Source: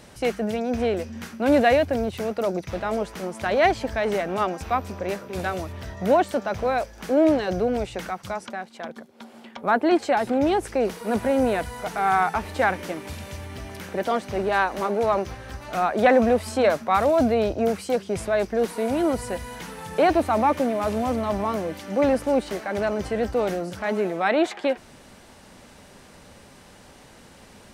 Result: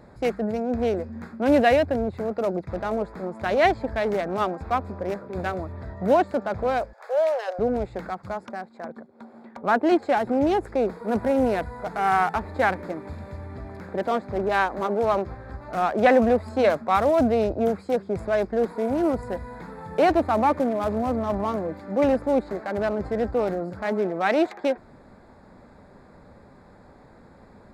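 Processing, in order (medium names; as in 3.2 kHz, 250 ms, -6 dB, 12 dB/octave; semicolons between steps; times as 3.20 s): local Wiener filter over 15 samples; 6.93–7.59 s: steep high-pass 500 Hz 48 dB/octave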